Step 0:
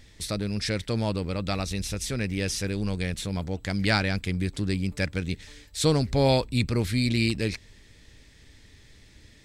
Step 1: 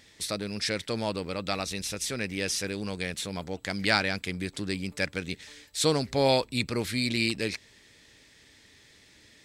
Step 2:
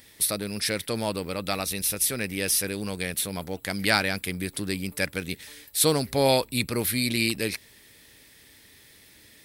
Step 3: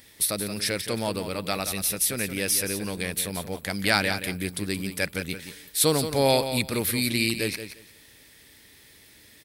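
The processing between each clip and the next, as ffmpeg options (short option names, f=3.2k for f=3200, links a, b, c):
-af "highpass=f=370:p=1,volume=1dB"
-af "aexciter=amount=8.4:drive=4.5:freq=9.7k,volume=2dB"
-af "aecho=1:1:175|350|525:0.316|0.0569|0.0102"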